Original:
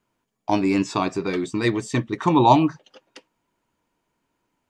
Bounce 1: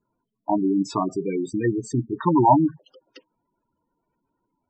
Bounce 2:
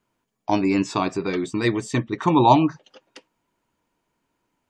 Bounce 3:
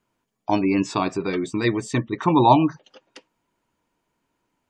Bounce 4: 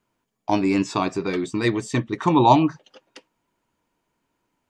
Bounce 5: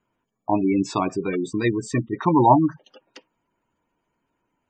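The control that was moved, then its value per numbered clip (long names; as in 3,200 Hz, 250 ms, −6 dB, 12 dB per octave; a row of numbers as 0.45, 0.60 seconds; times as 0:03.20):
gate on every frequency bin, under each frame's peak: −10, −45, −35, −60, −20 decibels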